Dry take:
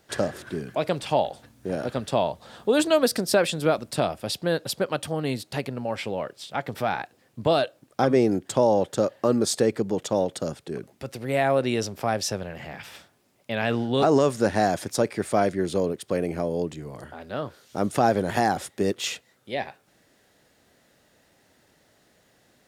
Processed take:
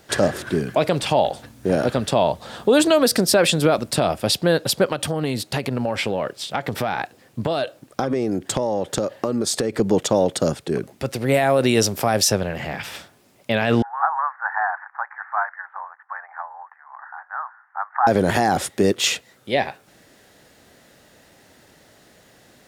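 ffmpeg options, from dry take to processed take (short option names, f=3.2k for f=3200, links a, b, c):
-filter_complex "[0:a]asettb=1/sr,asplit=3[a][b][c];[a]atrim=end=4.894[d];[b]atrim=start=4.89:end=9.8,asetpts=PTS-STARTPTS,afade=t=in:d=0.004:c=qsin,afade=t=out:st=4.906:d=0.004:c=qsin,acompressor=threshold=-27dB:ratio=10:attack=3.2:release=140:knee=1:detection=peak[e];[c]atrim=start=9.796[f];[d][e]acrossfade=d=0.004:c1=hsin:c2=qsin[g];[g][f]acrossfade=d=0.004:c1=qsin:c2=hsin,asettb=1/sr,asplit=3[h][i][j];[h]atrim=end=11.344[k];[i]atrim=start=11.34:end=12.32,asetpts=PTS-STARTPTS,afade=t=in:d=0.004:c=qsin,afade=t=out:st=0.976:d=0.004:c=qsin,highshelf=f=7.5k:g=10.5[l];[j]atrim=start=12.316[m];[k][l]acrossfade=d=0.004:c1=hsin:c2=qsin[n];[n][m]acrossfade=d=0.004:c1=qsin:c2=hsin,asettb=1/sr,asplit=3[o][p][q];[o]atrim=end=13.824[r];[p]atrim=start=13.82:end=18.07,asetpts=PTS-STARTPTS,afade=t=in:d=0.004:c=qsin,afade=t=out:st=4.246:d=0.004:c=qsin,asuperpass=centerf=1200:order=12:qfactor=1.2[s];[q]atrim=start=18.066[t];[r][s]acrossfade=d=0.004:c1=hsin:c2=qsin[u];[u][t]acrossfade=d=0.004:c1=qsin:c2=hsin,alimiter=level_in=15.5dB:limit=-1dB:release=50:level=0:latency=1,volume=-6dB"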